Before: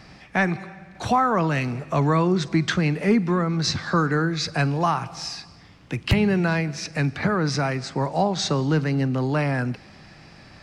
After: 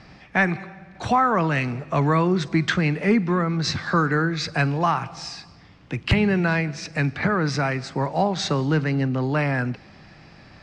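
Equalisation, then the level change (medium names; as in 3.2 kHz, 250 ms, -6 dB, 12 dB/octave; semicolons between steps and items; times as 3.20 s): dynamic bell 8.3 kHz, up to +6 dB, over -52 dBFS, Q 2.1; distance through air 79 m; dynamic bell 2 kHz, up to +4 dB, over -36 dBFS, Q 1; 0.0 dB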